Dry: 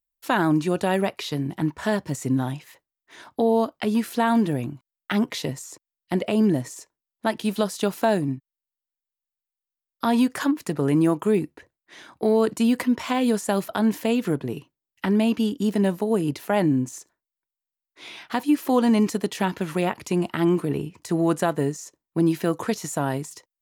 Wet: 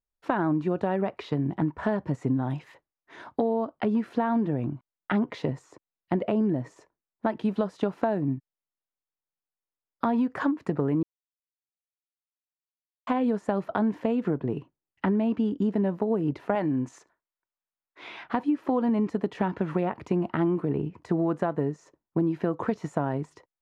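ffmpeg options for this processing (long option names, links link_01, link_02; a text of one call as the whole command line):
ffmpeg -i in.wav -filter_complex "[0:a]asettb=1/sr,asplit=3[link_01][link_02][link_03];[link_01]atrim=end=2.504[link_04];[link_02]atrim=start=2.5:end=3.54,asetpts=PTS-STARTPTS,afade=type=in:duration=0.004:curve=qsin,afade=type=out:start_time=1.036:duration=0.004:curve=qsin,highshelf=frequency=3100:gain=9.5[link_05];[link_03]atrim=start=3.536[link_06];[link_04][link_05]acrossfade=duration=0.004:curve1=hsin:curve2=qsin[link_07];[link_07][link_06]acrossfade=duration=0.004:curve1=qsin:curve2=hsin,asettb=1/sr,asplit=3[link_08][link_09][link_10];[link_08]atrim=end=16.554[link_11];[link_09]atrim=start=16.55:end=18.24,asetpts=PTS-STARTPTS,afade=type=in:duration=0.004:curve=qsin,afade=type=out:start_time=1.686:duration=0.004:curve=qsin,tiltshelf=frequency=640:gain=-6[link_12];[link_10]atrim=start=18.236[link_13];[link_11][link_12]acrossfade=duration=0.004:curve1=hsin:curve2=qsin[link_14];[link_14][link_13]acrossfade=duration=0.004:curve1=qsin:curve2=hsin,asplit=3[link_15][link_16][link_17];[link_15]atrim=end=11.03,asetpts=PTS-STARTPTS,afade=type=out:start_time=11.026:duration=0.004:curve=hsin[link_18];[link_16]atrim=start=11.03:end=13.07,asetpts=PTS-STARTPTS,volume=0[link_19];[link_17]atrim=start=13.07,asetpts=PTS-STARTPTS,afade=type=in:duration=0.004:curve=hsin[link_20];[link_18][link_19][link_20]concat=n=3:v=0:a=1,lowpass=1300,aemphasis=mode=production:type=cd,acompressor=threshold=-25dB:ratio=6,volume=3dB" out.wav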